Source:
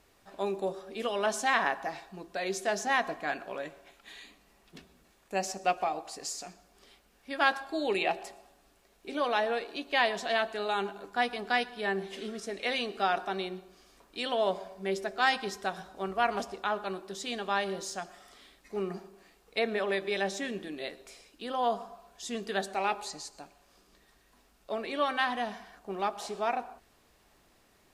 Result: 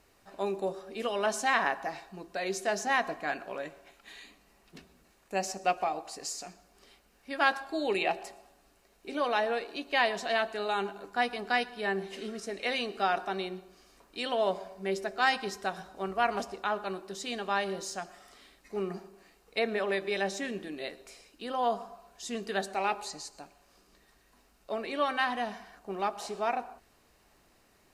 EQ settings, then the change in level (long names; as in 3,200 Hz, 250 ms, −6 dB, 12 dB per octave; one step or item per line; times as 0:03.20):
notch filter 3,400 Hz, Q 13
0.0 dB